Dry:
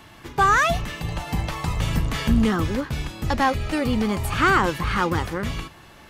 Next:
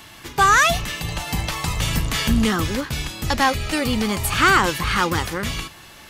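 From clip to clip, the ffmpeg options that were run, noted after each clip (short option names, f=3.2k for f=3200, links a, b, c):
-af "highshelf=f=2.2k:g=11"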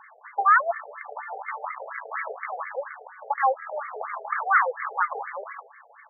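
-af "aeval=exprs='(tanh(5.62*val(0)+0.8)-tanh(0.8))/5.62':c=same,afftfilt=real='re*between(b*sr/1024,560*pow(1600/560,0.5+0.5*sin(2*PI*4.2*pts/sr))/1.41,560*pow(1600/560,0.5+0.5*sin(2*PI*4.2*pts/sr))*1.41)':imag='im*between(b*sr/1024,560*pow(1600/560,0.5+0.5*sin(2*PI*4.2*pts/sr))/1.41,560*pow(1600/560,0.5+0.5*sin(2*PI*4.2*pts/sr))*1.41)':win_size=1024:overlap=0.75,volume=5.5dB"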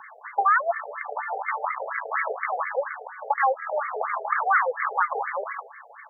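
-filter_complex "[0:a]acrossover=split=370|3000[a][b][c];[b]acompressor=threshold=-26dB:ratio=3[d];[a][d][c]amix=inputs=3:normalize=0,volume=5.5dB"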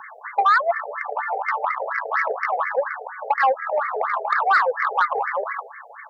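-af "asoftclip=type=tanh:threshold=-14dB,volume=5dB"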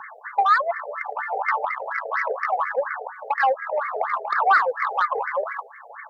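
-af "aphaser=in_gain=1:out_gain=1:delay=2:decay=0.37:speed=0.67:type=sinusoidal,volume=-2.5dB"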